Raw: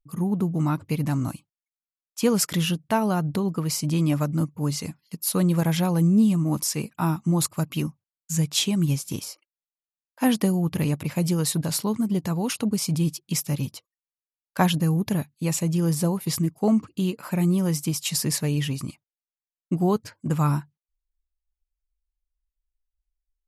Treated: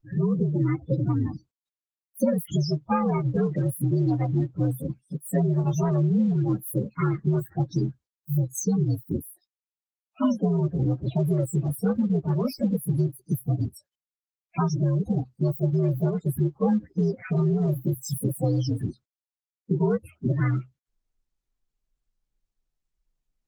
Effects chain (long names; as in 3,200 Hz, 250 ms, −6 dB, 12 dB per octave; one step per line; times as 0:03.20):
partials spread apart or drawn together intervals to 125%
downward compressor 5 to 1, threshold −30 dBFS, peak gain reduction 13.5 dB
spectral peaks only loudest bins 16
dynamic equaliser 440 Hz, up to +4 dB, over −49 dBFS, Q 1.2
level +8 dB
Opus 20 kbit/s 48,000 Hz